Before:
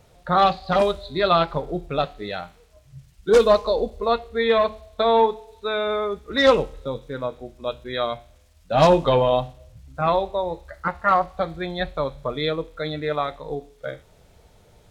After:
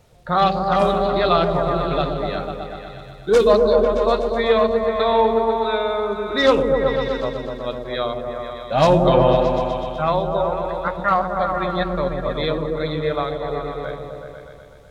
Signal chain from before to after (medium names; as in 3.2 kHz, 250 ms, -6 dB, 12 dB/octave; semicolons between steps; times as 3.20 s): delay with an opening low-pass 124 ms, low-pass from 400 Hz, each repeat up 1 oct, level 0 dB